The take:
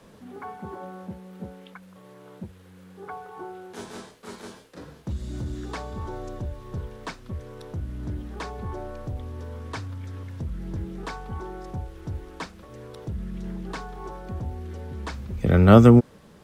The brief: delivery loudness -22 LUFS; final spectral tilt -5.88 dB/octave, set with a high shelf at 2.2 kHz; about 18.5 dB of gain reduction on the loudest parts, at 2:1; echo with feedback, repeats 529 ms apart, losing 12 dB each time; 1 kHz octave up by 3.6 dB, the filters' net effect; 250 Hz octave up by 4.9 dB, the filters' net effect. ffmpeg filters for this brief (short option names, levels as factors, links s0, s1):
-af "equalizer=f=250:t=o:g=5.5,equalizer=f=1000:t=o:g=3.5,highshelf=f=2200:g=4.5,acompressor=threshold=0.01:ratio=2,aecho=1:1:529|1058|1587:0.251|0.0628|0.0157,volume=6.31"